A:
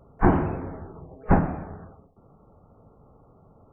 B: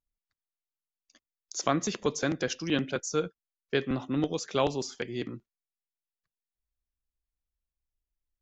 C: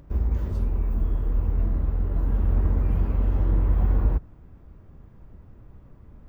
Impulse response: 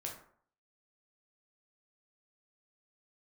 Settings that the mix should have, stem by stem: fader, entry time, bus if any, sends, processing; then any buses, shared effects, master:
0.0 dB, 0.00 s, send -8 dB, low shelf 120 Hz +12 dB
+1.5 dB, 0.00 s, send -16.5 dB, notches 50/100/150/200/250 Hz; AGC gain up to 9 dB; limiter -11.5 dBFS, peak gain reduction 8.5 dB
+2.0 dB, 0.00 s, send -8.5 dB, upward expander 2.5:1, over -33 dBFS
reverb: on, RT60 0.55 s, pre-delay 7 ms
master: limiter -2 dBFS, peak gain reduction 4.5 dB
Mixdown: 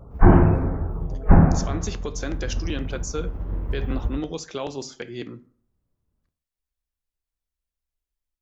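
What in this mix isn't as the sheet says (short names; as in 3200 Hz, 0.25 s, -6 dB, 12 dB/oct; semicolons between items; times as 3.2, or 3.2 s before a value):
stem B +1.5 dB -> -9.0 dB; stem C +2.0 dB -> -5.5 dB; reverb return +7.5 dB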